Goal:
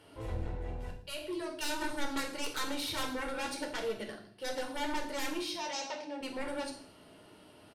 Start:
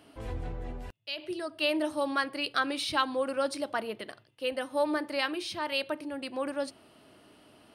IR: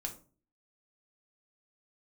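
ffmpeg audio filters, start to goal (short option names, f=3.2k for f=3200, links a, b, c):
-filter_complex "[0:a]aeval=exprs='0.2*(cos(1*acos(clip(val(0)/0.2,-1,1)))-cos(1*PI/2))+0.0708*(cos(7*acos(clip(val(0)/0.2,-1,1)))-cos(7*PI/2))':c=same,asoftclip=type=tanh:threshold=-26dB,asettb=1/sr,asplit=3[a][b][c];[a]atrim=end=5.514[d];[b]atrim=start=5.51:end=6.21,asetpts=PTS-STARTPTS,afade=t=in:d=0.004:c=qsin,afade=t=out:st=0.696:d=0.004:c=qsin,highpass=270,equalizer=f=380:t=q:w=4:g=-9,equalizer=f=730:t=q:w=4:g=5,equalizer=f=1.3k:t=q:w=4:g=-7,equalizer=f=5.6k:t=q:w=4:g=7,lowpass=f=6.6k:w=0.5412,lowpass=f=6.6k:w=1.3066[e];[c]atrim=start=6.206[f];[d][e]acrossfade=d=0.004:c1=hsin:c2=qsin[g];[g][f]acrossfade=d=0.004:c1=qsin:c2=hsin,aecho=1:1:111|222|333:0.119|0.0392|0.0129[h];[1:a]atrim=start_sample=2205,asetrate=27342,aresample=44100[i];[h][i]afir=irnorm=-1:irlink=0,volume=-5dB"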